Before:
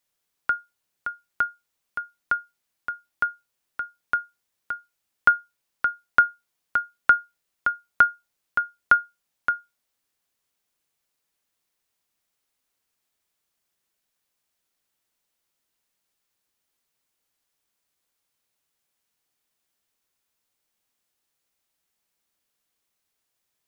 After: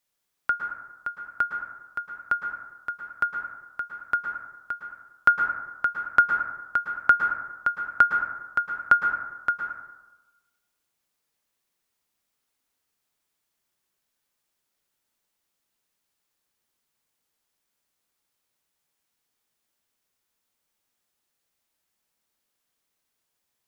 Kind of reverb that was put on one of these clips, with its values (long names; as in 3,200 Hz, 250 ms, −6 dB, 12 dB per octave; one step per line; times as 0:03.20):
dense smooth reverb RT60 1.1 s, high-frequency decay 0.35×, pre-delay 100 ms, DRR 4 dB
level −1 dB